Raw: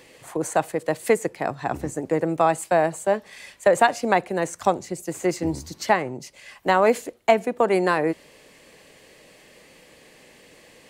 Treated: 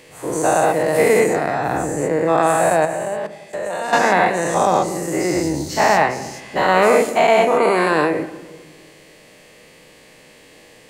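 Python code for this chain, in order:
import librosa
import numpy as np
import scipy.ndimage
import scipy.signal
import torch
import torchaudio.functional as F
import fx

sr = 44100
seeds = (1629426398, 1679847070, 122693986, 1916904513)

y = fx.spec_dilate(x, sr, span_ms=240)
y = fx.level_steps(y, sr, step_db=23, at=(2.85, 3.93))
y = fx.room_shoebox(y, sr, seeds[0], volume_m3=1200.0, walls='mixed', distance_m=0.5)
y = y * librosa.db_to_amplitude(-1.5)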